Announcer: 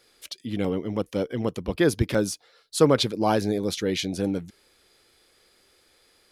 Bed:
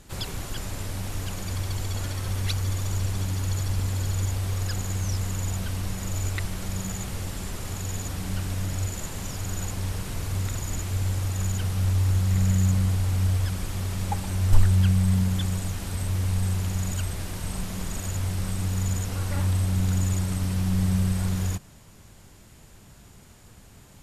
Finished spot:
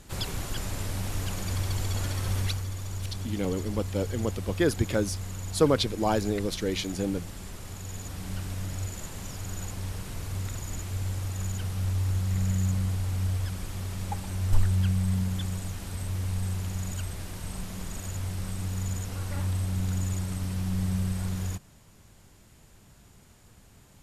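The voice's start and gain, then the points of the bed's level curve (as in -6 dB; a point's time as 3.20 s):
2.80 s, -3.5 dB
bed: 2.40 s 0 dB
2.68 s -7.5 dB
7.82 s -7.5 dB
8.33 s -5 dB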